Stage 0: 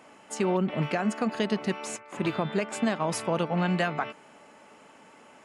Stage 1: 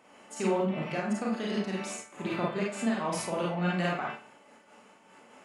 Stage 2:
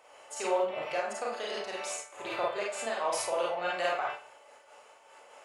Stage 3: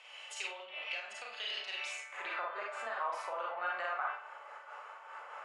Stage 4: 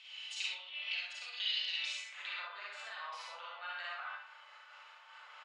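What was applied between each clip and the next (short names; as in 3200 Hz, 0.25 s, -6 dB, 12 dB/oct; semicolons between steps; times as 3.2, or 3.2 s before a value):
notches 50/100/150/200 Hz; Schroeder reverb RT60 0.4 s, combs from 31 ms, DRR -3 dB; noise-modulated level, depth 60%; gain -4.5 dB
EQ curve 110 Hz 0 dB, 180 Hz -22 dB, 530 Hz +9 dB, 1900 Hz +5 dB, 3800 Hz +8 dB; gain -5.5 dB
compressor 3:1, threshold -44 dBFS, peak gain reduction 14.5 dB; band-pass sweep 2900 Hz -> 1300 Hz, 1.76–2.56; gain +13 dB
band-pass 3900 Hz, Q 2.6; on a send: early reflections 60 ms -5 dB, 70 ms -4.5 dB; on the sum: gain +7.5 dB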